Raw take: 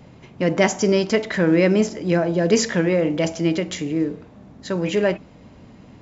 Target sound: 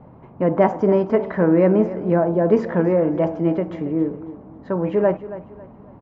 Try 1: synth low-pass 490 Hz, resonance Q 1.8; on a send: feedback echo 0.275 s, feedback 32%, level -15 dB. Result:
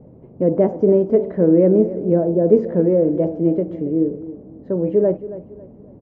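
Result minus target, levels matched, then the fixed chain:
1000 Hz band -11.0 dB
synth low-pass 1000 Hz, resonance Q 1.8; on a send: feedback echo 0.275 s, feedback 32%, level -15 dB

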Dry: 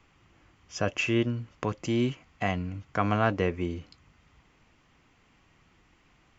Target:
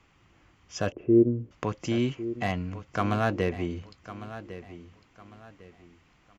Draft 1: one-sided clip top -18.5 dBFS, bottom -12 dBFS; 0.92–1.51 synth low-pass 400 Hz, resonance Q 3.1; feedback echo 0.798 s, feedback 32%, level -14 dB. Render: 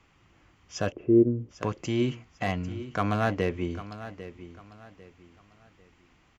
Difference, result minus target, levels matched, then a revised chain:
echo 0.305 s early
one-sided clip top -18.5 dBFS, bottom -12 dBFS; 0.92–1.51 synth low-pass 400 Hz, resonance Q 3.1; feedback echo 1.103 s, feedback 32%, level -14 dB

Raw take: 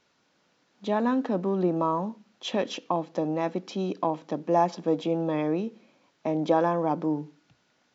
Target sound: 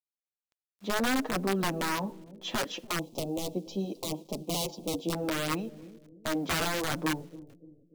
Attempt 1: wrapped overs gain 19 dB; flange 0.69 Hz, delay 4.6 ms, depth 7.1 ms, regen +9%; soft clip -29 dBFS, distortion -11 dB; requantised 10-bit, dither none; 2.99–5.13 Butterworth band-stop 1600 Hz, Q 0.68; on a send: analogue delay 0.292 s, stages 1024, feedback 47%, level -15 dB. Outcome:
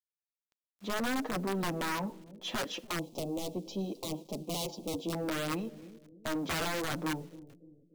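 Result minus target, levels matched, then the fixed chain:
soft clip: distortion +16 dB
wrapped overs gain 19 dB; flange 0.69 Hz, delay 4.6 ms, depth 7.1 ms, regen +9%; soft clip -17.5 dBFS, distortion -27 dB; requantised 10-bit, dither none; 2.99–5.13 Butterworth band-stop 1600 Hz, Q 0.68; on a send: analogue delay 0.292 s, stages 1024, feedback 47%, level -15 dB

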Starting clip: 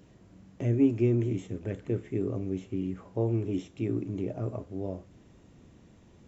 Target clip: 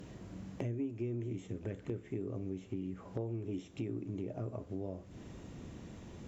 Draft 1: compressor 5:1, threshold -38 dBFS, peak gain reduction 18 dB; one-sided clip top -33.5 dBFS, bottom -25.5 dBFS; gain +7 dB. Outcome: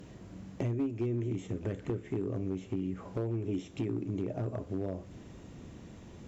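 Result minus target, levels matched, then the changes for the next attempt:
compressor: peak gain reduction -5.5 dB
change: compressor 5:1, threshold -45 dBFS, peak gain reduction 23.5 dB

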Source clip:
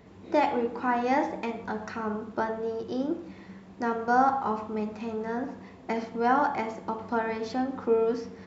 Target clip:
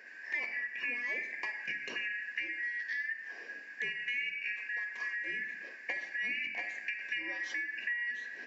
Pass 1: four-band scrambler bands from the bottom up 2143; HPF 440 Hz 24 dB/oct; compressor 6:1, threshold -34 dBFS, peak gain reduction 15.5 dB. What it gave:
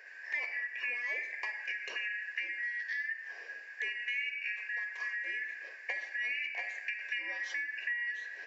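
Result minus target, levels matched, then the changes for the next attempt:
250 Hz band -12.0 dB
change: HPF 200 Hz 24 dB/oct

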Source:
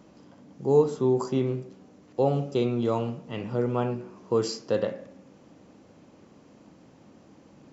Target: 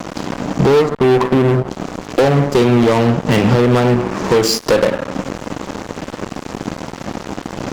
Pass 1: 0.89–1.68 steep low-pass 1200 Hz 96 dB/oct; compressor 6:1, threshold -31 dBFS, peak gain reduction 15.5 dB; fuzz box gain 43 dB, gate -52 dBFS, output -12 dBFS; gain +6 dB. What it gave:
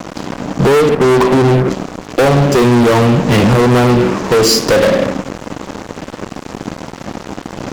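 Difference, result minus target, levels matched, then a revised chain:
compressor: peak gain reduction -8 dB
0.89–1.68 steep low-pass 1200 Hz 96 dB/oct; compressor 6:1, threshold -40.5 dBFS, peak gain reduction 23.5 dB; fuzz box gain 43 dB, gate -52 dBFS, output -12 dBFS; gain +6 dB

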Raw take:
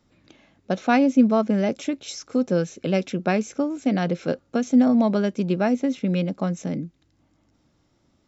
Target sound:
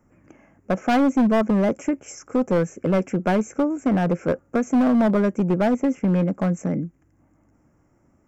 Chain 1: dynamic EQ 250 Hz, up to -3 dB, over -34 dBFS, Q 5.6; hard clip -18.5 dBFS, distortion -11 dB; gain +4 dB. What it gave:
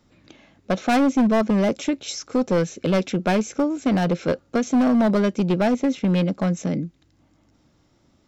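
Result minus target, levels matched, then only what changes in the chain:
4000 Hz band +7.5 dB
add after dynamic EQ: Butterworth band-stop 3900 Hz, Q 0.74

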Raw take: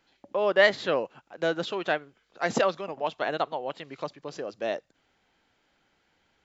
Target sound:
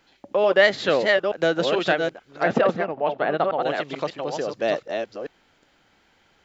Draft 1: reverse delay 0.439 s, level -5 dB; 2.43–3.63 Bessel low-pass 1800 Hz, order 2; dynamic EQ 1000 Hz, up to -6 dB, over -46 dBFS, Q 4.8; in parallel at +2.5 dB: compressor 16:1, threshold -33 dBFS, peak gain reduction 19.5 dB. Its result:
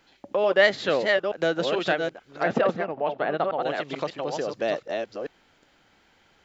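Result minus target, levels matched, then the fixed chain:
compressor: peak gain reduction +9 dB
reverse delay 0.439 s, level -5 dB; 2.43–3.63 Bessel low-pass 1800 Hz, order 2; dynamic EQ 1000 Hz, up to -6 dB, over -46 dBFS, Q 4.8; in parallel at +2.5 dB: compressor 16:1, threshold -23.5 dBFS, peak gain reduction 10.5 dB

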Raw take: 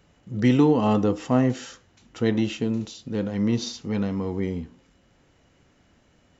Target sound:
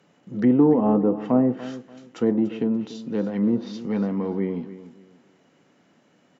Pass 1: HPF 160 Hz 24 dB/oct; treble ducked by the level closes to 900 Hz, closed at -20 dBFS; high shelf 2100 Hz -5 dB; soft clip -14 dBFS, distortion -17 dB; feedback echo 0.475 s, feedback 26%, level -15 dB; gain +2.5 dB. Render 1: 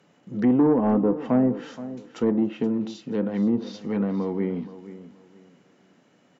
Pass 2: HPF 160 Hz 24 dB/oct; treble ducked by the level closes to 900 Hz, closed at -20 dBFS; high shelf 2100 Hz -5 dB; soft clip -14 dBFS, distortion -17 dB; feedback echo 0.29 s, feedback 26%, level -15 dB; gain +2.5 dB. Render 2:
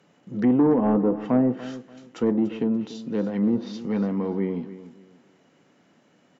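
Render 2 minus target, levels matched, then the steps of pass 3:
soft clip: distortion +16 dB
HPF 160 Hz 24 dB/oct; treble ducked by the level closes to 900 Hz, closed at -20 dBFS; high shelf 2100 Hz -5 dB; soft clip -4.5 dBFS, distortion -33 dB; feedback echo 0.29 s, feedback 26%, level -15 dB; gain +2.5 dB

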